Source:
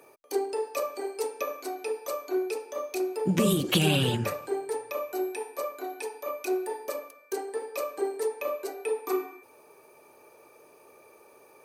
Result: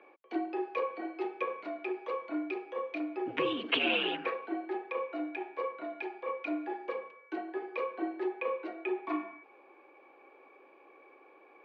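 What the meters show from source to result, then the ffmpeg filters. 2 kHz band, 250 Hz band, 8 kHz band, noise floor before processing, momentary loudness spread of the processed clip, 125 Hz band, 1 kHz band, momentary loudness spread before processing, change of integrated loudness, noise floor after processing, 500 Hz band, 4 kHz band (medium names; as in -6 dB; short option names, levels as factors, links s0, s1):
+1.0 dB, -4.5 dB, under -35 dB, -57 dBFS, 9 LU, -28.5 dB, -2.0 dB, 11 LU, -5.0 dB, -60 dBFS, -6.0 dB, -4.0 dB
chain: -af "highpass=f=360:t=q:w=0.5412,highpass=f=360:t=q:w=1.307,lowpass=f=3000:t=q:w=0.5176,lowpass=f=3000:t=q:w=0.7071,lowpass=f=3000:t=q:w=1.932,afreqshift=-68,aemphasis=mode=production:type=bsi,volume=0.891"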